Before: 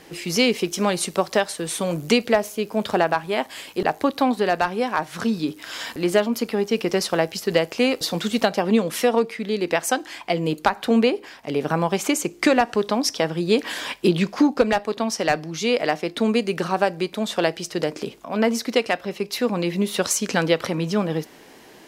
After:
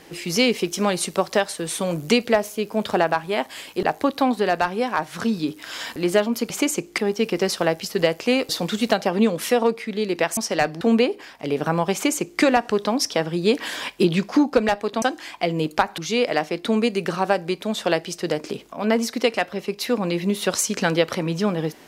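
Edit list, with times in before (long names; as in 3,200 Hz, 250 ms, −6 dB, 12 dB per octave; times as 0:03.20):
0:09.89–0:10.85: swap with 0:15.06–0:15.50
0:11.97–0:12.45: duplicate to 0:06.50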